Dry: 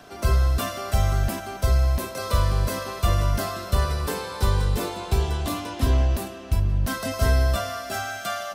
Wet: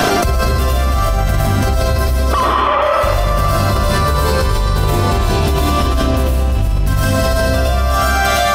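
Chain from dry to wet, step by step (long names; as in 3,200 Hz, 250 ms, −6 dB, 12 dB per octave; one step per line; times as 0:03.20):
0:02.33–0:02.82: three sine waves on the formant tracks
0:07.07–0:07.70: notch filter 2,100 Hz, Q 24
comb and all-pass reverb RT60 2.1 s, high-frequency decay 0.75×, pre-delay 75 ms, DRR −7.5 dB
envelope flattener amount 100%
level −3 dB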